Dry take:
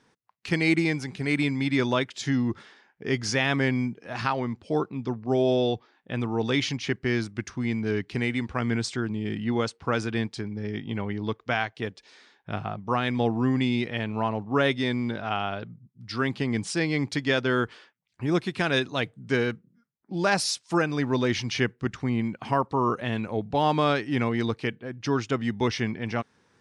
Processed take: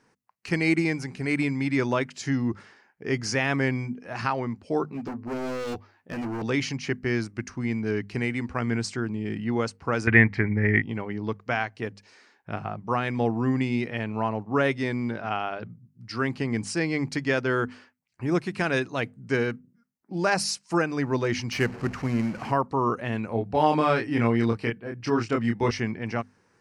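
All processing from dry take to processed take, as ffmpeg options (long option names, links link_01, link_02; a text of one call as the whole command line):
ffmpeg -i in.wav -filter_complex "[0:a]asettb=1/sr,asplit=3[link_01][link_02][link_03];[link_01]atrim=end=4.874[link_04];[link_02]atrim=start=4.87:end=6.42,asetpts=PTS-STARTPTS,afade=type=in:duration=0.004:curve=qsin,afade=type=out:start_time=1.546:duration=0.004:curve=qsin,asplit=2[link_05][link_06];[link_06]adelay=12,volume=-2.5dB[link_07];[link_05][link_07]amix=inputs=2:normalize=0,atrim=end_sample=68355,asoftclip=type=hard:threshold=-28.5dB[link_08];[link_03]atrim=start=6.416[link_09];[link_04][link_08]acrossfade=duration=0.004:curve1=hsin:curve2=qsin[link_10];[link_10][link_09]acrossfade=duration=0.004:curve1=qsin:curve2=hsin,asettb=1/sr,asplit=3[link_11][link_12][link_13];[link_11]atrim=end=10.074[link_14];[link_12]atrim=start=10.07:end=10.82,asetpts=PTS-STARTPTS,afade=type=in:duration=0.004:curve=qsin,afade=type=out:start_time=0.746:duration=0.004:curve=qsin,equalizer=frequency=83:width=2.1:gain=11.5,acontrast=71,lowpass=frequency=2000:width_type=q:width=7.4[link_15];[link_13]atrim=start=10.816[link_16];[link_14][link_15]acrossfade=duration=0.004:curve1=hsin:curve2=qsin[link_17];[link_17][link_16]acrossfade=duration=0.004:curve1=qsin:curve2=hsin,asettb=1/sr,asplit=3[link_18][link_19][link_20];[link_18]atrim=end=21.524[link_21];[link_19]atrim=start=21.52:end=22.52,asetpts=PTS-STARTPTS,afade=type=in:duration=0.004:curve=qsin,afade=type=out:start_time=0.996:duration=0.004:curve=qsin,aeval=exprs='val(0)+0.5*0.02*sgn(val(0))':channel_layout=same,acrusher=bits=4:mode=log:mix=0:aa=0.000001,adynamicsmooth=sensitivity=2.5:basefreq=4500[link_22];[link_20]atrim=start=22.516[link_23];[link_21][link_22]acrossfade=duration=0.004:curve1=hsin:curve2=qsin[link_24];[link_24][link_23]acrossfade=duration=0.004:curve1=qsin:curve2=hsin,asettb=1/sr,asplit=3[link_25][link_26][link_27];[link_25]atrim=end=23.294[link_28];[link_26]atrim=start=23.29:end=25.71,asetpts=PTS-STARTPTS,afade=type=in:duration=0.004:curve=qsin,afade=type=out:start_time=2.416:duration=0.004:curve=qsin,bandreject=frequency=6500:width=6,asplit=2[link_29][link_30];[link_30]adelay=26,volume=-3.5dB[link_31];[link_29][link_31]amix=inputs=2:normalize=0,atrim=end_sample=106722[link_32];[link_27]atrim=start=25.706[link_33];[link_28][link_32]acrossfade=duration=0.004:curve1=hsin:curve2=qsin[link_34];[link_34][link_33]acrossfade=duration=0.004:curve1=qsin:curve2=hsin,equalizer=frequency=3500:width_type=o:width=0.3:gain=-12,bandreject=frequency=50:width_type=h:width=6,bandreject=frequency=100:width_type=h:width=6,bandreject=frequency=150:width_type=h:width=6,bandreject=frequency=200:width_type=h:width=6,bandreject=frequency=250:width_type=h:width=6" out.wav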